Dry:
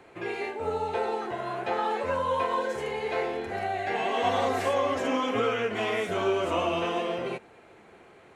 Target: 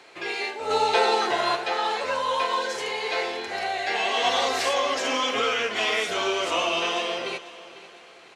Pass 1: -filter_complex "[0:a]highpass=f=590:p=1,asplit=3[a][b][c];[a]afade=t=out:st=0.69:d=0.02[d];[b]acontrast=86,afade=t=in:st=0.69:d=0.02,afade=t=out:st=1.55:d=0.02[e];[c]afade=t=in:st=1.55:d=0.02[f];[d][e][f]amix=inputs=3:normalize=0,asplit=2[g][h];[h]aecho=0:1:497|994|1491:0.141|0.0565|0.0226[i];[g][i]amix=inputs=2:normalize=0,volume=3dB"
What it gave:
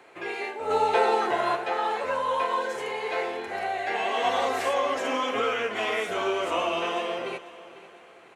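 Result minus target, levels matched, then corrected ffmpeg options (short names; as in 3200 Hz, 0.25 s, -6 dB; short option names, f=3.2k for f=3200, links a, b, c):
4000 Hz band -6.5 dB
-filter_complex "[0:a]highpass=f=590:p=1,equalizer=f=4.8k:w=0.88:g=13.5,asplit=3[a][b][c];[a]afade=t=out:st=0.69:d=0.02[d];[b]acontrast=86,afade=t=in:st=0.69:d=0.02,afade=t=out:st=1.55:d=0.02[e];[c]afade=t=in:st=1.55:d=0.02[f];[d][e][f]amix=inputs=3:normalize=0,asplit=2[g][h];[h]aecho=0:1:497|994|1491:0.141|0.0565|0.0226[i];[g][i]amix=inputs=2:normalize=0,volume=3dB"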